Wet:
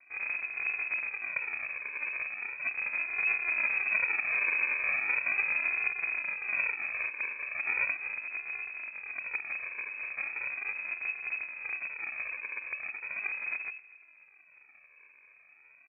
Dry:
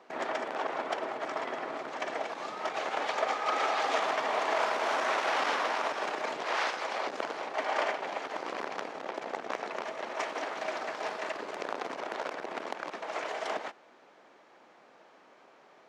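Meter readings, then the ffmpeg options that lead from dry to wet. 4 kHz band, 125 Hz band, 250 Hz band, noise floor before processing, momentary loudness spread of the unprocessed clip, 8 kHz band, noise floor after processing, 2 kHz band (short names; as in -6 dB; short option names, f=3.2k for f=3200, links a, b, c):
under -40 dB, n/a, under -15 dB, -59 dBFS, 9 LU, under -30 dB, -60 dBFS, +6.5 dB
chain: -filter_complex "[0:a]equalizer=f=430:t=o:w=0.29:g=-6,aresample=16000,acrusher=samples=37:mix=1:aa=0.000001:lfo=1:lforange=22.2:lforate=0.38,aresample=44100,afreqshift=18,asplit=2[a][b];[b]adelay=238,lowpass=f=1.4k:p=1,volume=-18.5dB,asplit=2[c][d];[d]adelay=238,lowpass=f=1.4k:p=1,volume=0.39,asplit=2[e][f];[f]adelay=238,lowpass=f=1.4k:p=1,volume=0.39[g];[a][c][e][g]amix=inputs=4:normalize=0,lowpass=f=2.2k:t=q:w=0.5098,lowpass=f=2.2k:t=q:w=0.6013,lowpass=f=2.2k:t=q:w=0.9,lowpass=f=2.2k:t=q:w=2.563,afreqshift=-2600"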